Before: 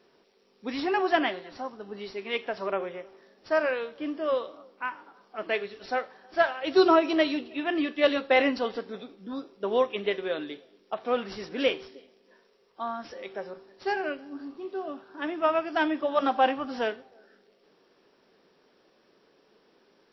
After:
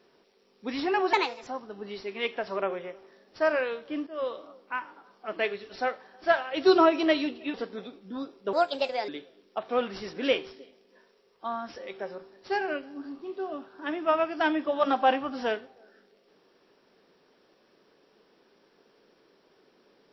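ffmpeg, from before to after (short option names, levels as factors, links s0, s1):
-filter_complex "[0:a]asplit=7[s0][s1][s2][s3][s4][s5][s6];[s0]atrim=end=1.134[s7];[s1]atrim=start=1.13:end=1.57,asetpts=PTS-STARTPTS,asetrate=57330,aresample=44100,atrim=end_sample=14926,asetpts=PTS-STARTPTS[s8];[s2]atrim=start=1.566:end=4.17,asetpts=PTS-STARTPTS,afade=t=out:st=2.6:d=0.004:c=hsin:silence=0.188365[s9];[s3]atrim=start=4.17:end=7.642,asetpts=PTS-STARTPTS,afade=t=in:d=0.33:silence=0.188365[s10];[s4]atrim=start=8.698:end=9.694[s11];[s5]atrim=start=9.69:end=10.44,asetpts=PTS-STARTPTS,asetrate=59535,aresample=44100[s12];[s6]atrim=start=10.436[s13];[s7][s8]acrossfade=d=0.004:c1=hsin:c2=hsin[s14];[s9][s10]concat=n=2:v=0:a=1[s15];[s14][s15]acrossfade=d=0.004:c1=hsin:c2=hsin[s16];[s16][s11]acrossfade=d=0.004:c1=hsin:c2=hsin[s17];[s17][s12]acrossfade=d=0.004:c1=hsin:c2=hsin[s18];[s18][s13]acrossfade=d=0.004:c1=hsin:c2=hsin"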